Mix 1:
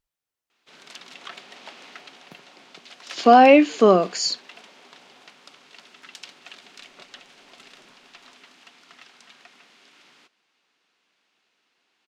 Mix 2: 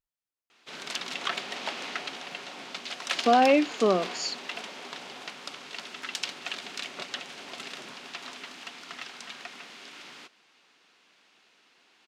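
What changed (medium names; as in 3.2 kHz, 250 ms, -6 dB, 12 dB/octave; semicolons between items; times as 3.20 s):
speech -8.5 dB; background +8.5 dB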